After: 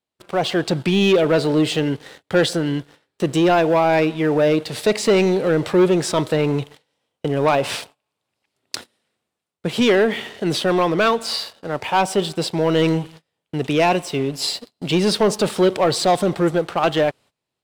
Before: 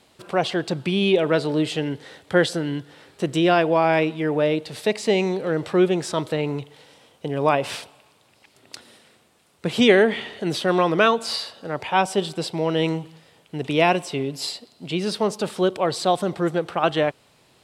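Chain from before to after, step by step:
noise gate −45 dBFS, range −19 dB
automatic gain control
leveller curve on the samples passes 2
level −7 dB

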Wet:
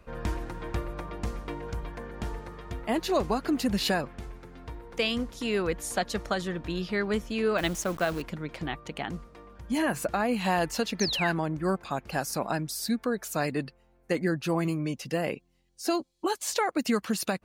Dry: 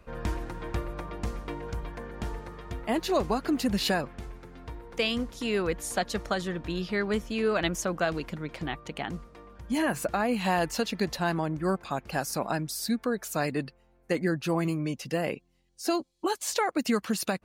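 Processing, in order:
0:07.58–0:08.22: hold until the input has moved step −39 dBFS
0:11.00–0:11.32: sound drawn into the spectrogram fall 1,400–6,600 Hz −31 dBFS

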